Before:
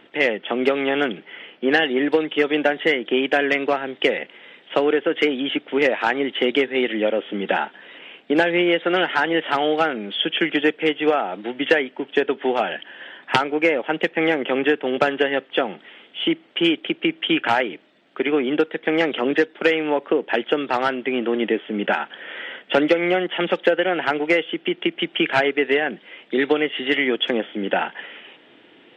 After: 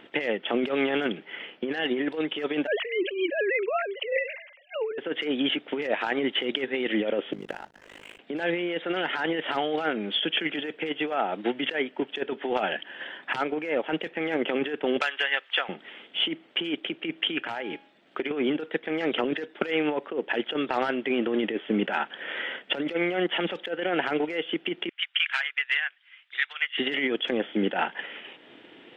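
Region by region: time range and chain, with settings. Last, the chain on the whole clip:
2.67–4.98 s: formants replaced by sine waves + decay stretcher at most 81 dB/s
7.33–8.19 s: compression 16:1, threshold -29 dBFS + hysteresis with a dead band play -38.5 dBFS + AM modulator 51 Hz, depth 85%
15.01–15.69 s: high-pass 1.3 kHz + three bands compressed up and down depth 100%
17.38–18.31 s: de-hum 275.7 Hz, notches 20 + compression 10:1, threshold -27 dBFS
24.89–26.78 s: high-pass 1.3 kHz 24 dB/octave + upward expansion, over -38 dBFS
whole clip: transient shaper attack +3 dB, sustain -3 dB; compressor with a negative ratio -23 dBFS, ratio -1; trim -4 dB

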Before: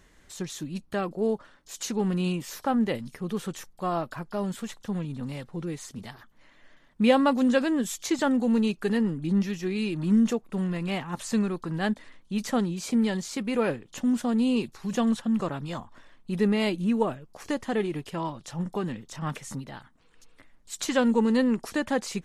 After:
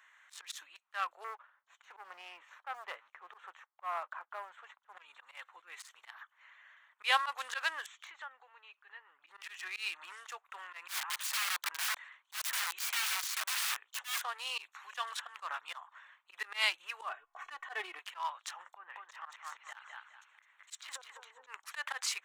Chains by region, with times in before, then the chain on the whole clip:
1.24–4.97 s: band-pass filter 260 Hz, Q 0.51 + waveshaping leveller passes 1
7.86–9.27 s: compression 4:1, threshold -38 dBFS + distance through air 140 m
10.88–14.23 s: steep high-pass 200 Hz 72 dB/octave + integer overflow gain 31.5 dB
17.09–17.99 s: tilt EQ -4 dB/octave + comb 2.7 ms, depth 89%
18.75–21.47 s: low-pass that closes with the level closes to 370 Hz, closed at -22 dBFS + compression 5:1, threshold -31 dBFS + thinning echo 208 ms, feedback 32%, high-pass 320 Hz, level -4 dB
whole clip: local Wiener filter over 9 samples; inverse Chebyshev high-pass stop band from 240 Hz, stop band 70 dB; slow attack 106 ms; trim +4.5 dB

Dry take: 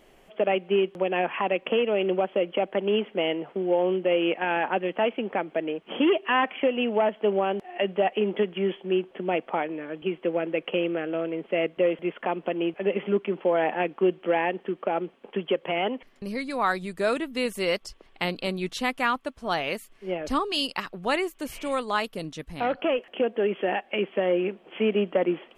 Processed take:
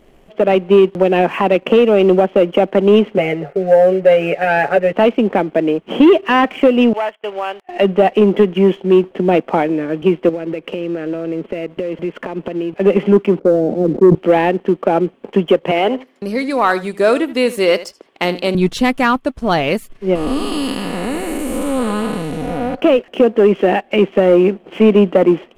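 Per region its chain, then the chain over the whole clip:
3.18–4.93 s: static phaser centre 1 kHz, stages 6 + comb 7.1 ms, depth 95%
6.93–7.69 s: high-pass 1.1 kHz + treble shelf 3.2 kHz -3 dB + gate -50 dBFS, range -13 dB
10.29–12.73 s: compression 10:1, threshold -33 dBFS + band-stop 740 Hz, Q 8.7
13.39–14.15 s: steep low-pass 560 Hz + decay stretcher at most 96 dB/s
15.71–18.55 s: high-pass 320 Hz + feedback delay 78 ms, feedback 16%, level -16 dB
20.15–22.75 s: spectral blur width 414 ms + resonant high shelf 6.7 kHz +7.5 dB, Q 1.5 + comb 4.1 ms, depth 45%
whole clip: bass shelf 470 Hz +11.5 dB; waveshaping leveller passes 1; level rider gain up to 4 dB; trim +1.5 dB

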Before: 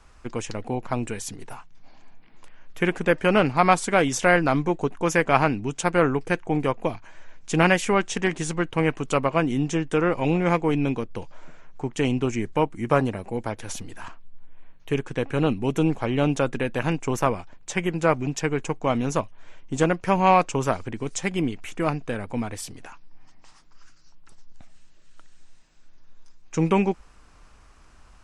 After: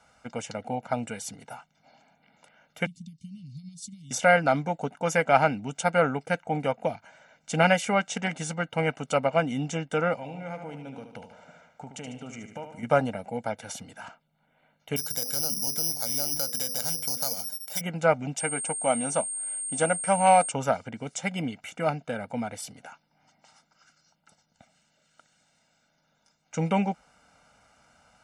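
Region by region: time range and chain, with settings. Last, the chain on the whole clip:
2.86–4.11 s: treble shelf 8.1 kHz -10 dB + compression 12:1, threshold -27 dBFS + elliptic band-stop 180–4300 Hz, stop band 50 dB
10.15–12.83 s: compression 4:1, threshold -33 dBFS + feedback delay 74 ms, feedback 53%, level -8 dB
14.96–17.81 s: hum notches 50/100/150/200/250/300/350/400/450/500 Hz + compression 3:1, threshold -35 dBFS + careless resampling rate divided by 8×, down filtered, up zero stuff
18.37–20.50 s: peaking EQ 98 Hz -10.5 dB 1.3 oct + band-stop 430 Hz + whistle 8.6 kHz -30 dBFS
whole clip: high-pass 240 Hz 12 dB/octave; bass shelf 460 Hz +6.5 dB; comb 1.4 ms, depth 90%; trim -5.5 dB

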